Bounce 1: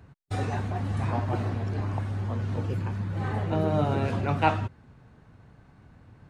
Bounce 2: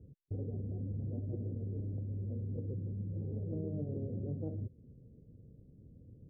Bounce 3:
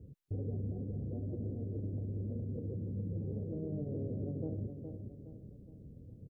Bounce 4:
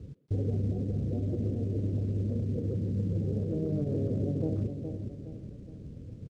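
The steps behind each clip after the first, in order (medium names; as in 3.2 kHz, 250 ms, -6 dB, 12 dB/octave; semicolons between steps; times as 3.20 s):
elliptic low-pass 510 Hz, stop band 50 dB; compression 3:1, threshold -35 dBFS, peak gain reduction 10 dB; trim -2.5 dB
peak limiter -33.5 dBFS, peak gain reduction 5.5 dB; feedback delay 416 ms, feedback 45%, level -7 dB; trim +3 dB
companded quantiser 8-bit; speakerphone echo 130 ms, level -14 dB; decimation joined by straight lines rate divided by 3×; trim +8 dB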